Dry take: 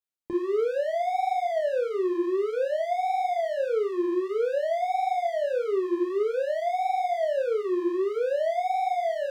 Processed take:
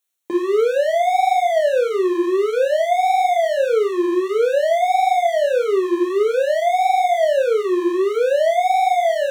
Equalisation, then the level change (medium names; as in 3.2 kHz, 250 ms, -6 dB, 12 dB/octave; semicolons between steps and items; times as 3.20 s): high-pass 300 Hz; Butterworth band-stop 4.9 kHz, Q 6.1; treble shelf 2.5 kHz +8 dB; +9.0 dB